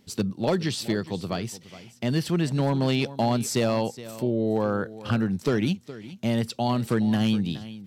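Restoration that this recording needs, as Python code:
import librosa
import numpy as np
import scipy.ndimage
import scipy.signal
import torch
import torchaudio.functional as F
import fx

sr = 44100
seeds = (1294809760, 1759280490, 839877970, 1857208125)

y = fx.fix_declip(x, sr, threshold_db=-15.5)
y = fx.fix_echo_inverse(y, sr, delay_ms=418, level_db=-16.5)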